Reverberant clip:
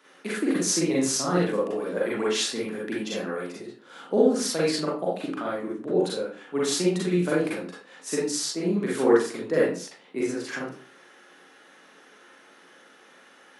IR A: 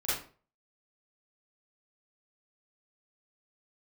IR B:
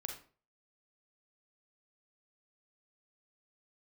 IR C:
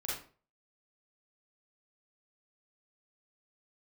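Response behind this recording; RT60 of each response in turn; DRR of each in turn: C; 0.40, 0.40, 0.40 seconds; −12.0, 2.5, −7.0 decibels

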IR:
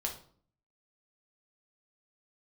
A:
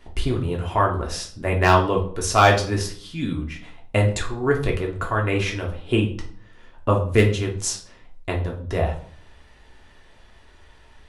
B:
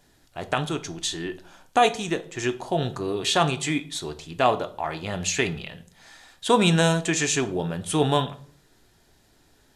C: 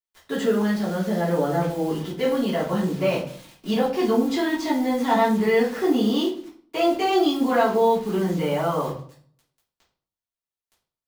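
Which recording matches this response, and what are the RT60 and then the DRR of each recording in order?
A; 0.50, 0.50, 0.50 seconds; −0.5, 8.5, −10.5 decibels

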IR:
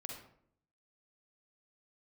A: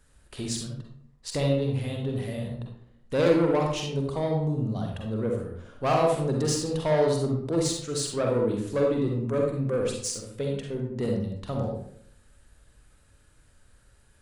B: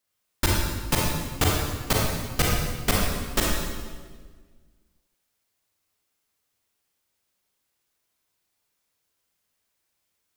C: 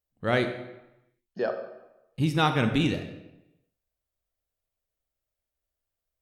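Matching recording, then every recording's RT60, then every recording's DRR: A; 0.65, 1.5, 0.95 seconds; 0.0, −3.5, 6.5 decibels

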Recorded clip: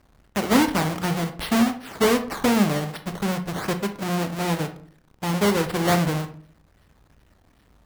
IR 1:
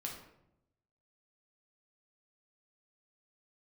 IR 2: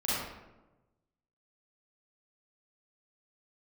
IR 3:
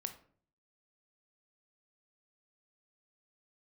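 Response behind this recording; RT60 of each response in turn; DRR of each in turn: 3; 0.80, 1.1, 0.50 seconds; −1.0, −10.0, 7.5 decibels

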